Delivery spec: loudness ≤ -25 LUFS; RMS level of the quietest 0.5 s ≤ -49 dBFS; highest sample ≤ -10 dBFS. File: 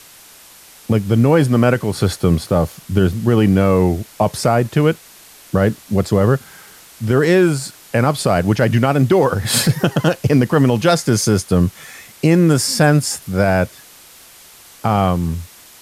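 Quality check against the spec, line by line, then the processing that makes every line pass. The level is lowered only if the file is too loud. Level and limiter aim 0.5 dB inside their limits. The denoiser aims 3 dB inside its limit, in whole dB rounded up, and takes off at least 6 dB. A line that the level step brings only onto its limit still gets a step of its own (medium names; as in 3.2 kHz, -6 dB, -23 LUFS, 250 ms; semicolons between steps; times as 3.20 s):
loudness -16.0 LUFS: fail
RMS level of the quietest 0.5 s -43 dBFS: fail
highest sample -3.0 dBFS: fail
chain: trim -9.5 dB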